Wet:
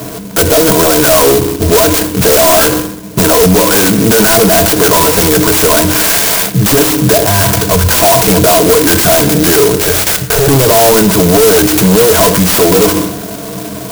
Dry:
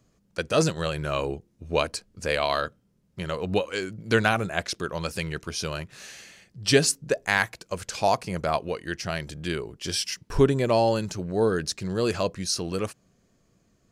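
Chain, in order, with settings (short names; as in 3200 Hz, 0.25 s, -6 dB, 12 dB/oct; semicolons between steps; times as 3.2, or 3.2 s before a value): ripple EQ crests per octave 1.7, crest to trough 14 dB; overdrive pedal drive 37 dB, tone 1600 Hz, clips at -2.5 dBFS; 7.13–7.89 bell 80 Hz +11 dB 2.3 oct; 9.73–10.48 fixed phaser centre 1000 Hz, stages 6; reverb RT60 0.65 s, pre-delay 3 ms, DRR 11.5 dB; maximiser +20 dB; clock jitter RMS 0.14 ms; gain -1 dB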